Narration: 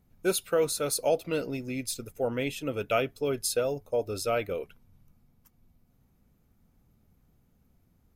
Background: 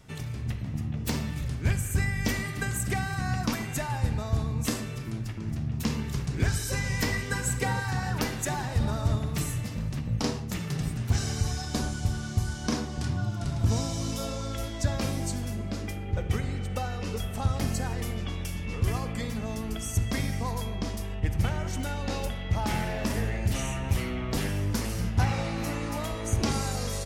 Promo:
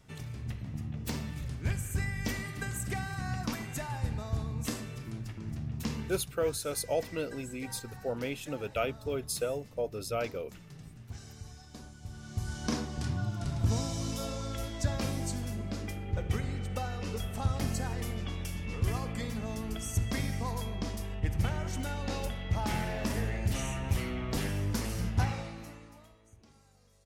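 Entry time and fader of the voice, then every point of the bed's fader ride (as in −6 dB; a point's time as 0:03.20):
5.85 s, −5.0 dB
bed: 0:06.07 −6 dB
0:06.34 −18.5 dB
0:11.98 −18.5 dB
0:12.56 −3.5 dB
0:25.19 −3.5 dB
0:26.42 −33.5 dB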